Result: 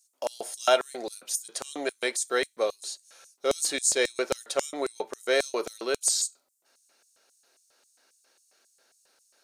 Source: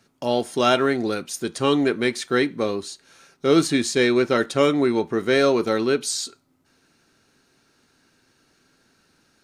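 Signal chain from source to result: LFO high-pass square 3.7 Hz 570–7600 Hz; high shelf 4100 Hz +10 dB; gain -7 dB

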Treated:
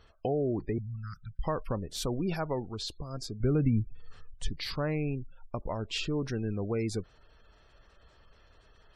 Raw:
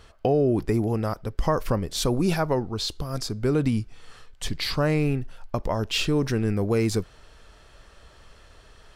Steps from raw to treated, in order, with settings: 0.78–1.44 elliptic band-stop 170–1400 Hz, stop band 40 dB; spectral gate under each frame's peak -30 dB strong; 3.4–4.5 low shelf 210 Hz +10.5 dB; gain -8.5 dB

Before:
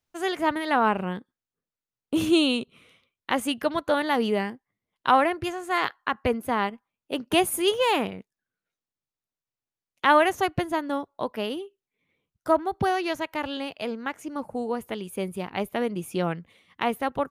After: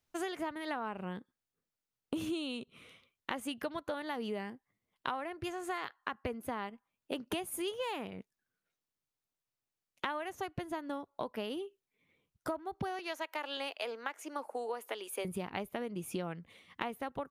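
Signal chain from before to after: 12.99–15.25 Bessel high-pass 530 Hz, order 8; compressor 12:1, threshold -34 dBFS, peak gain reduction 21.5 dB

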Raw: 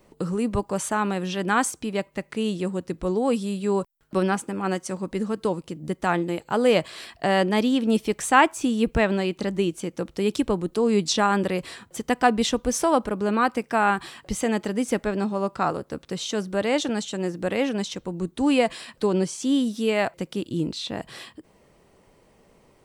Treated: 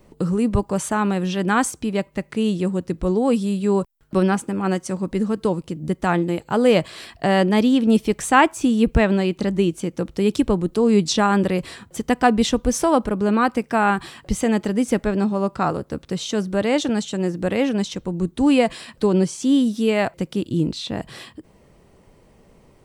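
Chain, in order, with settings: low shelf 240 Hz +8 dB; gain +1.5 dB

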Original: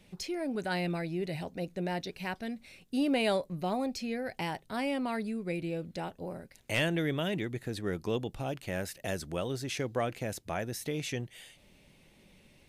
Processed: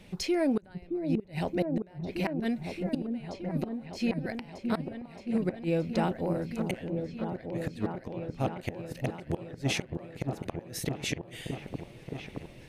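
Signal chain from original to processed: high shelf 4300 Hz -6 dB; flipped gate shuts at -26 dBFS, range -30 dB; repeats that get brighter 0.622 s, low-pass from 400 Hz, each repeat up 1 oct, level -3 dB; gain +8 dB

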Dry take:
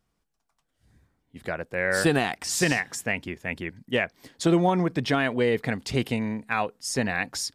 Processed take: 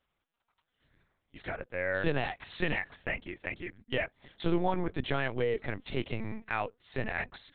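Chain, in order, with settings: low shelf 66 Hz -10 dB; LPC vocoder at 8 kHz pitch kept; mismatched tape noise reduction encoder only; gain -6.5 dB

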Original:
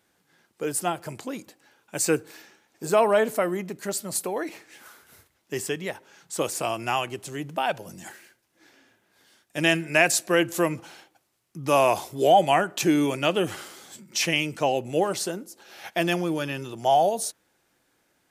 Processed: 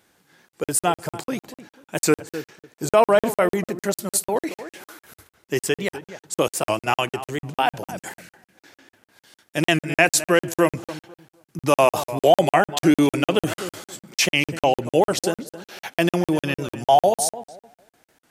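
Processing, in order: in parallel at -0.5 dB: limiter -16 dBFS, peak gain reduction 11.5 dB; 6.48–7.03 on the sum: expander -23 dBFS; on a send: darkening echo 0.251 s, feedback 22%, low-pass 1700 Hz, level -13 dB; on the sum: crackling interface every 0.15 s, samples 2048, zero, from 0.49; record warp 78 rpm, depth 100 cents; gain +1 dB

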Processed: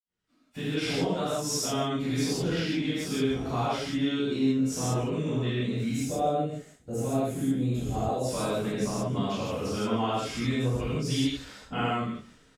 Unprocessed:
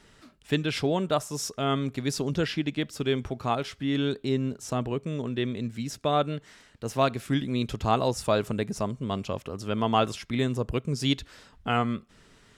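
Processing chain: spectral gain 5.87–8.19, 830–6200 Hz -10 dB; compressor, threshold -32 dBFS, peak gain reduction 13.5 dB; echo 0.151 s -19.5 dB; AGC gain up to 8 dB; expander -40 dBFS; reverb, pre-delay 46 ms; gain +4 dB

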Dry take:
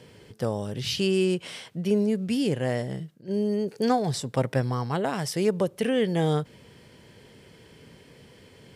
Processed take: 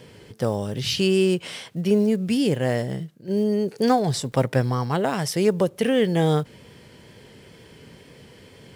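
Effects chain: block floating point 7-bit; wow and flutter 24 cents; gain +4 dB

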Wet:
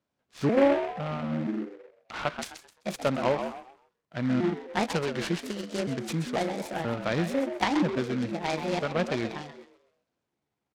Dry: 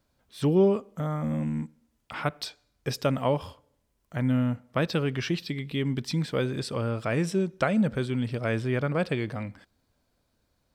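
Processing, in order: trilling pitch shifter +6 st, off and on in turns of 0.489 s; on a send: frequency-shifting echo 0.129 s, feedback 39%, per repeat +85 Hz, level -9 dB; on the sum: spectral noise reduction 8 dB; BPF 140–5000 Hz; noise-modulated delay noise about 1300 Hz, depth 0.057 ms

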